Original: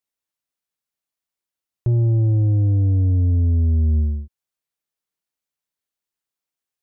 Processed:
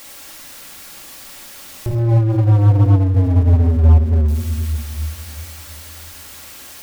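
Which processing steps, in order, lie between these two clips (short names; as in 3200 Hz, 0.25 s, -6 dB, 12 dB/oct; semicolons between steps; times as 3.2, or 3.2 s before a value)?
zero-crossing step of -36 dBFS; shoebox room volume 2400 m³, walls mixed, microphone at 2.3 m; in parallel at -5 dB: wavefolder -17.5 dBFS; on the sum: bell 120 Hz -3 dB 1.7 oct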